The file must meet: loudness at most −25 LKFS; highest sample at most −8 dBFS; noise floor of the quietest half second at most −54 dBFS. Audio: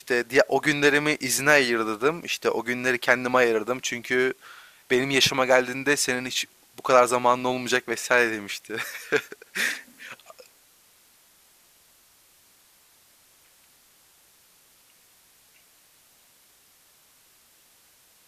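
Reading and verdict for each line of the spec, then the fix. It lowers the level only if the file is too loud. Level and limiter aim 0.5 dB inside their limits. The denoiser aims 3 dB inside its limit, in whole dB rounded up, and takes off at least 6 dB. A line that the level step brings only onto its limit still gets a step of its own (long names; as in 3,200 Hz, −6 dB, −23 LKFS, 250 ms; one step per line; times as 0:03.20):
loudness −23.0 LKFS: out of spec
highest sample −3.0 dBFS: out of spec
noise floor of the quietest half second −59 dBFS: in spec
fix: level −2.5 dB
brickwall limiter −8.5 dBFS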